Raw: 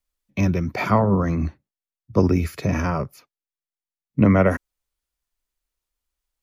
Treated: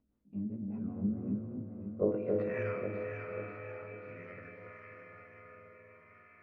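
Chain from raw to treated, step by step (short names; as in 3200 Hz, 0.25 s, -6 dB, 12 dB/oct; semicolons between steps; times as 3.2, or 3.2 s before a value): short-time reversal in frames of 42 ms; Doppler pass-by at 2.64, 25 m/s, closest 7.5 m; dynamic EQ 840 Hz, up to -6 dB, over -46 dBFS, Q 0.91; band-pass sweep 220 Hz -> 2200 Hz, 1.76–2.61; high shelf 2700 Hz -9.5 dB; on a send at -1 dB: reverb RT60 6.3 s, pre-delay 3 ms; on the sum: upward compressor, threshold -54 dBFS; rotary speaker horn 5 Hz, later 0.7 Hz, at 0.73; echo with dull and thin repeats by turns 0.271 s, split 880 Hz, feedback 67%, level -3 dB; treble ducked by the level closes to 2700 Hz, closed at -48 dBFS; gain +7 dB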